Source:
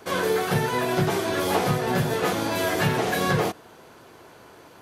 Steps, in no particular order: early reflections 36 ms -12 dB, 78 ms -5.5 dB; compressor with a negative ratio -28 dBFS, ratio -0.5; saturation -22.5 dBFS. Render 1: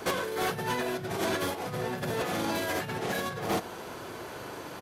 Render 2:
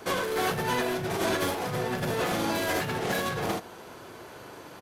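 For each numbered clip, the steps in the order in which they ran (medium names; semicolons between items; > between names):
early reflections > compressor with a negative ratio > saturation; saturation > early reflections > compressor with a negative ratio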